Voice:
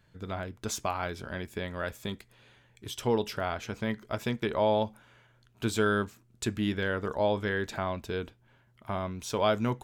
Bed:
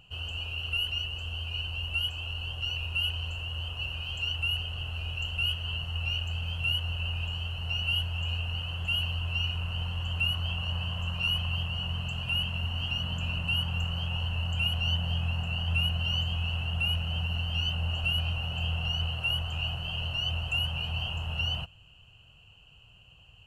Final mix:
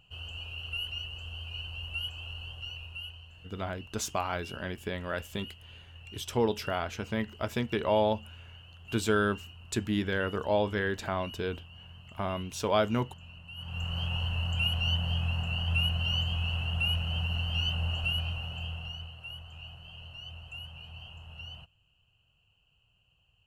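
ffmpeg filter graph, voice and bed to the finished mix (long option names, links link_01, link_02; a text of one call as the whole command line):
ffmpeg -i stem1.wav -i stem2.wav -filter_complex "[0:a]adelay=3300,volume=0dB[link_01];[1:a]volume=11.5dB,afade=type=out:start_time=2.32:duration=0.98:silence=0.251189,afade=type=in:start_time=13.55:duration=0.45:silence=0.141254,afade=type=out:start_time=17.82:duration=1.3:silence=0.211349[link_02];[link_01][link_02]amix=inputs=2:normalize=0" out.wav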